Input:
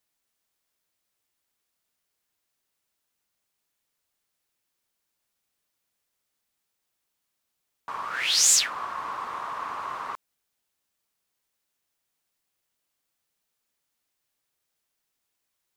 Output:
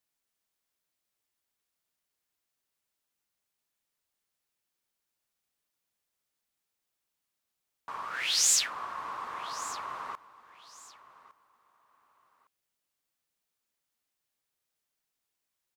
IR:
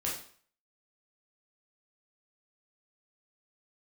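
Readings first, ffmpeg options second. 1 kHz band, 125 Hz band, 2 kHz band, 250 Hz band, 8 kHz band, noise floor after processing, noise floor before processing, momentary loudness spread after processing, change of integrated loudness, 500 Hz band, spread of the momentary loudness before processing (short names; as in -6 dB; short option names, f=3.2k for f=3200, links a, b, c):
-5.0 dB, n/a, -5.0 dB, -5.0 dB, -5.0 dB, -85 dBFS, -80 dBFS, 19 LU, -5.5 dB, -5.0 dB, 19 LU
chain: -af "aecho=1:1:1159|2318:0.126|0.0327,volume=-5dB"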